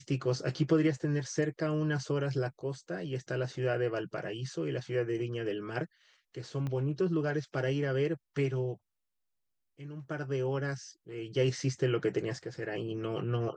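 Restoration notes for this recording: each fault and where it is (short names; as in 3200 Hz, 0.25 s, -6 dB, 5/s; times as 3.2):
6.67 pop -25 dBFS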